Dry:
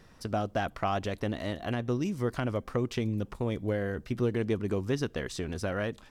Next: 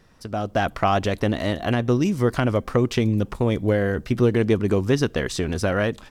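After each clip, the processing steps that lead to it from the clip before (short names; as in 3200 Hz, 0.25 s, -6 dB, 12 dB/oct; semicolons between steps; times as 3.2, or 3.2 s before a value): AGC gain up to 10 dB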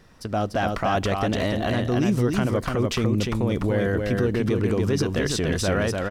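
limiter -17 dBFS, peak gain reduction 10 dB; on a send: echo 0.293 s -3.5 dB; on the sum: gain +2.5 dB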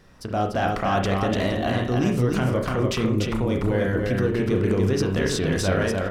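reverb, pre-delay 31 ms, DRR 3.5 dB; gain -1 dB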